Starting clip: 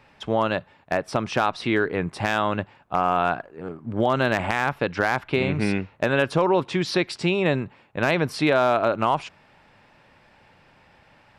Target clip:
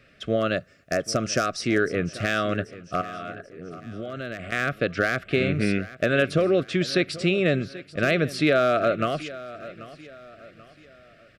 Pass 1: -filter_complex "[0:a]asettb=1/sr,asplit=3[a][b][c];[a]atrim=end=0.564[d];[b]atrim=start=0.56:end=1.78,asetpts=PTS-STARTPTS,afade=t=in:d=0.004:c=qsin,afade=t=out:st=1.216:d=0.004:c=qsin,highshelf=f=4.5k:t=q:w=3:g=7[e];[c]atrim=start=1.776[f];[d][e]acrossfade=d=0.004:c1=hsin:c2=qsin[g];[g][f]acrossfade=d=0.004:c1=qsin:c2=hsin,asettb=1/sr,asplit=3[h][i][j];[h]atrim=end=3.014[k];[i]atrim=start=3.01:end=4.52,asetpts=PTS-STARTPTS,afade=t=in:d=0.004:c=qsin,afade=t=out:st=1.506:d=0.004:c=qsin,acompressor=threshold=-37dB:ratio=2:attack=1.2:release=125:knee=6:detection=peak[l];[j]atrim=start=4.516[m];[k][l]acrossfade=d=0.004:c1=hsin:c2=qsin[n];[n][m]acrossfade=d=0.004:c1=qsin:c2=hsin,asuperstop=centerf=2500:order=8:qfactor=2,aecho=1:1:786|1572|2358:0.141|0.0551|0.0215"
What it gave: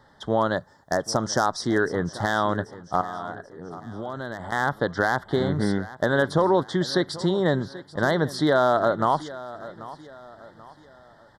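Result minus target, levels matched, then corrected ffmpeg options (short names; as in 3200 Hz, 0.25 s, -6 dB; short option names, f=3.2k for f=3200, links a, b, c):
1000 Hz band +5.5 dB
-filter_complex "[0:a]asettb=1/sr,asplit=3[a][b][c];[a]atrim=end=0.564[d];[b]atrim=start=0.56:end=1.78,asetpts=PTS-STARTPTS,afade=t=in:d=0.004:c=qsin,afade=t=out:st=1.216:d=0.004:c=qsin,highshelf=f=4.5k:t=q:w=3:g=7[e];[c]atrim=start=1.776[f];[d][e]acrossfade=d=0.004:c1=hsin:c2=qsin[g];[g][f]acrossfade=d=0.004:c1=qsin:c2=hsin,asettb=1/sr,asplit=3[h][i][j];[h]atrim=end=3.014[k];[i]atrim=start=3.01:end=4.52,asetpts=PTS-STARTPTS,afade=t=in:d=0.004:c=qsin,afade=t=out:st=1.506:d=0.004:c=qsin,acompressor=threshold=-37dB:ratio=2:attack=1.2:release=125:knee=6:detection=peak[l];[j]atrim=start=4.516[m];[k][l]acrossfade=d=0.004:c1=hsin:c2=qsin[n];[n][m]acrossfade=d=0.004:c1=qsin:c2=hsin,asuperstop=centerf=910:order=8:qfactor=2,aecho=1:1:786|1572|2358:0.141|0.0551|0.0215"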